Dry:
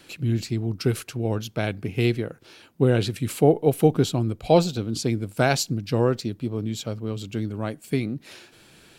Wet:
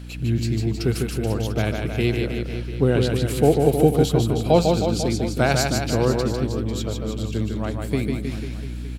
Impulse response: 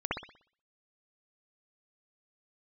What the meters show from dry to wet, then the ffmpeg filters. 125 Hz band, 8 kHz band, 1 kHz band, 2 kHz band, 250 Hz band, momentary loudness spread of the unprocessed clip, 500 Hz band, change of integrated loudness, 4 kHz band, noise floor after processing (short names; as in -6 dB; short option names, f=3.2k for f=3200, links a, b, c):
+3.0 dB, +2.5 dB, +2.5 dB, +2.5 dB, +2.5 dB, 10 LU, +2.5 dB, +2.5 dB, +2.5 dB, -30 dBFS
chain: -filter_complex "[0:a]aeval=exprs='val(0)+0.0178*(sin(2*PI*60*n/s)+sin(2*PI*2*60*n/s)/2+sin(2*PI*3*60*n/s)/3+sin(2*PI*4*60*n/s)/4+sin(2*PI*5*60*n/s)/5)':c=same,aecho=1:1:150|315|496.5|696.2|915.8:0.631|0.398|0.251|0.158|0.1,asplit=2[a][b];[1:a]atrim=start_sample=2205[c];[b][c]afir=irnorm=-1:irlink=0,volume=-27dB[d];[a][d]amix=inputs=2:normalize=0"